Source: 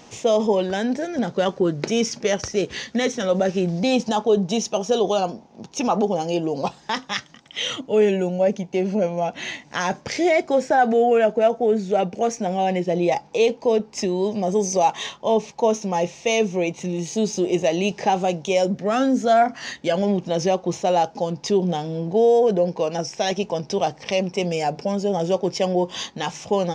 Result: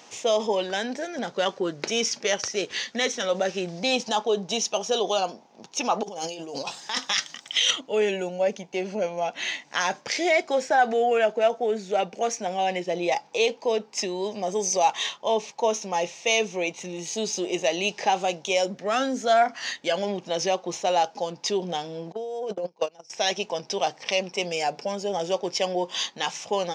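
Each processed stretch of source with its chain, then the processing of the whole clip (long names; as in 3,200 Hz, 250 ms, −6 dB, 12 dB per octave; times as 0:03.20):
0:06.03–0:07.71: compressor whose output falls as the input rises −29 dBFS + high-shelf EQ 4,000 Hz +10.5 dB
0:22.12–0:23.10: noise gate −20 dBFS, range −30 dB + parametric band 1,700 Hz −6 dB 0.4 octaves + compressor whose output falls as the input rises −24 dBFS
whole clip: dynamic equaliser 3,700 Hz, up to +3 dB, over −36 dBFS, Q 0.83; high-pass filter 760 Hz 6 dB per octave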